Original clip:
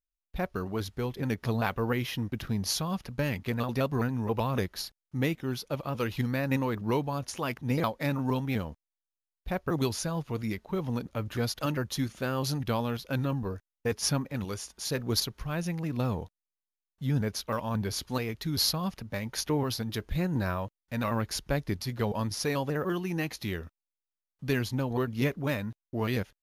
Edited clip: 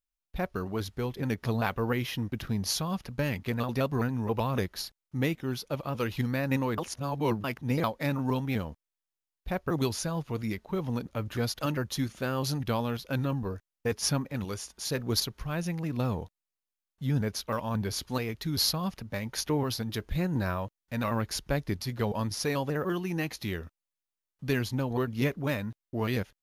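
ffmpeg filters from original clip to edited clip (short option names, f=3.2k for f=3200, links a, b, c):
-filter_complex "[0:a]asplit=3[a][b][c];[a]atrim=end=6.782[d];[b]atrim=start=6.778:end=7.442,asetpts=PTS-STARTPTS,areverse[e];[c]atrim=start=7.438[f];[d][e]acrossfade=d=0.004:c1=hsin:c2=hsin[g];[g][f]acrossfade=d=0.004:c1=hsin:c2=hsin"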